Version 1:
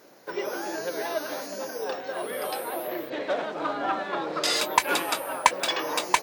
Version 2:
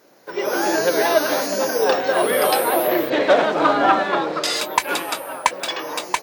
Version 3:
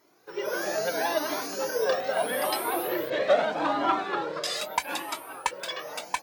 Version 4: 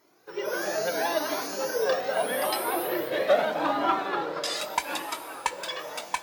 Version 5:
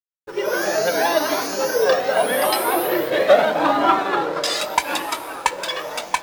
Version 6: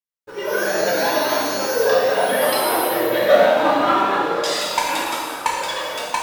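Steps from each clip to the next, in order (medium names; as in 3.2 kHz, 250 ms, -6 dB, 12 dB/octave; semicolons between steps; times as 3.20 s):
level rider gain up to 16 dB; trim -1 dB
Shepard-style flanger rising 0.78 Hz; trim -4.5 dB
plate-style reverb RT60 4.6 s, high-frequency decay 0.85×, DRR 12 dB
hysteresis with a dead band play -43 dBFS; trim +8.5 dB
gated-style reverb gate 480 ms falling, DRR -4 dB; trim -4.5 dB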